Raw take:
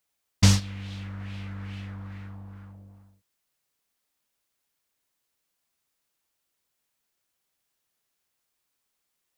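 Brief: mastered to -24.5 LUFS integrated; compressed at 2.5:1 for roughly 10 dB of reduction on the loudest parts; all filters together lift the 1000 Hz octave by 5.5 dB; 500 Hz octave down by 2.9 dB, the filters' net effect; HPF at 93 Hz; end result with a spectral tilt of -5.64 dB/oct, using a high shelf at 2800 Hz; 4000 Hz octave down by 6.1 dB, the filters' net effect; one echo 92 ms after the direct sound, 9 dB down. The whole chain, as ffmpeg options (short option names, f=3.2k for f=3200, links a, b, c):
-af "highpass=93,equalizer=f=500:t=o:g=-6,equalizer=f=1k:t=o:g=9,highshelf=f=2.8k:g=-5.5,equalizer=f=4k:t=o:g=-3.5,acompressor=threshold=-30dB:ratio=2.5,aecho=1:1:92:0.355,volume=12.5dB"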